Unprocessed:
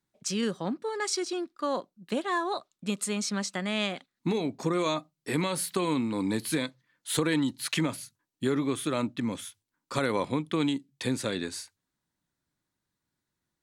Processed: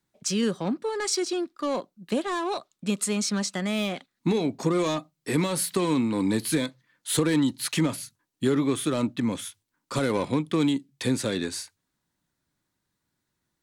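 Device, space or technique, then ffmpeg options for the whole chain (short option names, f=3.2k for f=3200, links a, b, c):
one-band saturation: -filter_complex "[0:a]acrossover=split=520|4900[a][b][c];[b]asoftclip=type=tanh:threshold=-33dB[d];[a][d][c]amix=inputs=3:normalize=0,volume=4.5dB"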